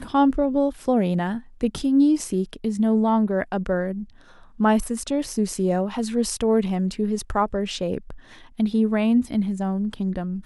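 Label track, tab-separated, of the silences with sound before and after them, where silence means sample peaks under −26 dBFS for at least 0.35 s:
4.020000	4.600000	silence
8.100000	8.600000	silence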